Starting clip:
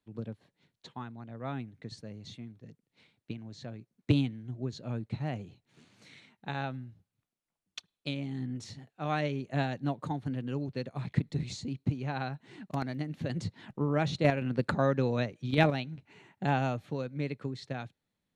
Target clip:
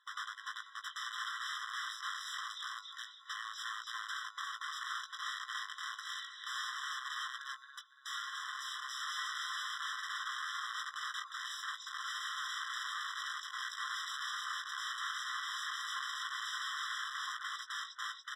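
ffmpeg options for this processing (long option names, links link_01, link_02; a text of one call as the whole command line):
ffmpeg -i in.wav -filter_complex "[0:a]aphaser=in_gain=1:out_gain=1:delay=3.7:decay=0.49:speed=1.2:type=sinusoidal,aecho=1:1:285|570|855|1140|1425:0.447|0.179|0.0715|0.0286|0.0114,acrossover=split=240|830[link_01][link_02][link_03];[link_01]acrusher=samples=36:mix=1:aa=0.000001[link_04];[link_04][link_02][link_03]amix=inputs=3:normalize=0,acompressor=threshold=-45dB:ratio=4,aeval=exprs='(mod(211*val(0)+1,2)-1)/211':channel_layout=same,lowpass=5000,asplit=2[link_05][link_06];[link_06]adelay=18,volume=-8dB[link_07];[link_05][link_07]amix=inputs=2:normalize=0,afftfilt=real='re*eq(mod(floor(b*sr/1024/1000),2),1)':imag='im*eq(mod(floor(b*sr/1024/1000),2),1)':win_size=1024:overlap=0.75,volume=16dB" out.wav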